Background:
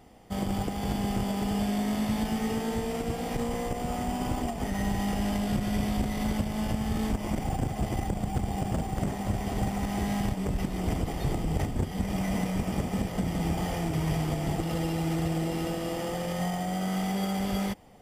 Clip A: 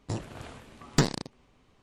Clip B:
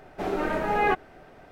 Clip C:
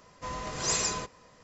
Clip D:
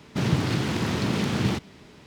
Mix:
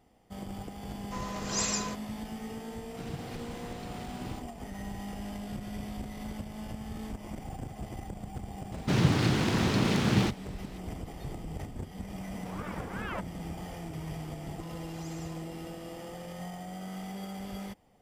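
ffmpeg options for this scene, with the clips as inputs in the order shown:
ffmpeg -i bed.wav -i cue0.wav -i cue1.wav -i cue2.wav -i cue3.wav -filter_complex "[3:a]asplit=2[link_01][link_02];[4:a]asplit=2[link_03][link_04];[0:a]volume=-10.5dB[link_05];[2:a]aeval=exprs='val(0)*sin(2*PI*500*n/s+500*0.8/2.6*sin(2*PI*2.6*n/s))':channel_layout=same[link_06];[link_02]acompressor=threshold=-33dB:ratio=6:attack=3.2:release=140:knee=1:detection=peak[link_07];[link_01]atrim=end=1.43,asetpts=PTS-STARTPTS,volume=-2.5dB,afade=type=in:duration=0.004:curve=hsin,afade=type=out:start_time=1.426:duration=0.004:curve=hsin,adelay=890[link_08];[link_03]atrim=end=2.06,asetpts=PTS-STARTPTS,volume=-18dB,afade=type=in:duration=0.004:curve=hsin,afade=type=out:start_time=2.056:duration=0.004:curve=hsin,adelay=2810[link_09];[link_04]atrim=end=2.06,asetpts=PTS-STARTPTS,volume=-1dB,afade=type=in:duration=0.004:curve=hsin,afade=type=out:start_time=2.056:duration=0.004:curve=hsin,adelay=8720[link_10];[link_06]atrim=end=1.51,asetpts=PTS-STARTPTS,volume=-11.5dB,afade=type=in:duration=0.004:curve=hsin,afade=type=out:start_time=1.506:duration=0.004:curve=hsin,adelay=12260[link_11];[link_07]atrim=end=1.43,asetpts=PTS-STARTPTS,volume=-16dB,afade=type=in:duration=0.004:curve=hsin,afade=type=out:start_time=1.426:duration=0.004:curve=hsin,adelay=14370[link_12];[link_05][link_08][link_09][link_10][link_11][link_12]amix=inputs=6:normalize=0" out.wav

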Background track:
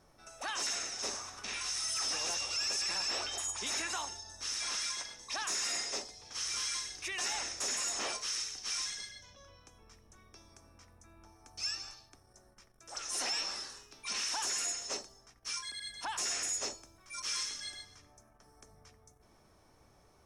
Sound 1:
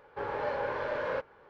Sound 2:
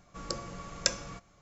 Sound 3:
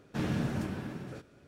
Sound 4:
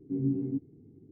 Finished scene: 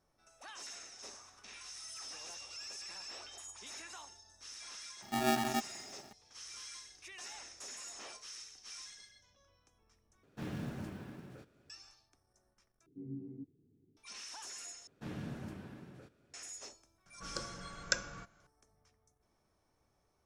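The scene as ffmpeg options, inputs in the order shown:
ffmpeg -i bed.wav -i cue0.wav -i cue1.wav -i cue2.wav -i cue3.wav -filter_complex "[4:a]asplit=2[link_01][link_02];[3:a]asplit=2[link_03][link_04];[0:a]volume=-12.5dB[link_05];[link_01]aeval=exprs='val(0)*sgn(sin(2*PI*510*n/s))':channel_layout=same[link_06];[link_03]acrusher=bits=7:mode=log:mix=0:aa=0.000001[link_07];[2:a]equalizer=frequency=1500:width=6.9:gain=14.5[link_08];[link_05]asplit=4[link_09][link_10][link_11][link_12];[link_09]atrim=end=10.234[link_13];[link_07]atrim=end=1.47,asetpts=PTS-STARTPTS,volume=-9.5dB[link_14];[link_10]atrim=start=11.696:end=12.864[link_15];[link_02]atrim=end=1.11,asetpts=PTS-STARTPTS,volume=-15.5dB[link_16];[link_11]atrim=start=13.966:end=14.874[link_17];[link_04]atrim=end=1.47,asetpts=PTS-STARTPTS,volume=-11.5dB[link_18];[link_12]atrim=start=16.336[link_19];[link_06]atrim=end=1.11,asetpts=PTS-STARTPTS,volume=-2.5dB,afade=type=in:duration=0.004:curve=hsin,afade=type=out:start_time=1.106:duration=0.004:curve=hsin,adelay=5020[link_20];[link_08]atrim=end=1.41,asetpts=PTS-STARTPTS,volume=-6.5dB,afade=type=in:duration=0.004:curve=hsin,afade=type=out:start_time=1.406:duration=0.004:curve=hsin,adelay=17060[link_21];[link_13][link_14]acrossfade=duration=0.004:curve1=hsin:curve2=hsin[link_22];[link_22][link_15]acrossfade=duration=0.004:curve1=hsin:curve2=hsin[link_23];[link_23][link_16]acrossfade=duration=0.004:curve1=hsin:curve2=hsin[link_24];[link_24][link_17]acrossfade=duration=0.004:curve1=hsin:curve2=hsin[link_25];[link_25][link_18]acrossfade=duration=0.004:curve1=hsin:curve2=hsin[link_26];[link_26][link_19]acrossfade=duration=0.004:curve1=hsin:curve2=hsin[link_27];[link_27][link_20][link_21]amix=inputs=3:normalize=0" out.wav

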